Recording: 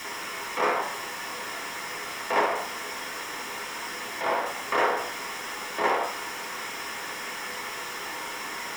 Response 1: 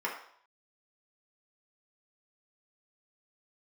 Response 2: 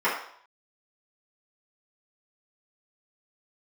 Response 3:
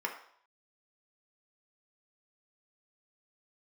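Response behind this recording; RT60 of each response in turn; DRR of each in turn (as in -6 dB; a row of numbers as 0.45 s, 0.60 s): 1; 0.60 s, 0.60 s, 0.60 s; -3.5 dB, -11.0 dB, 0.5 dB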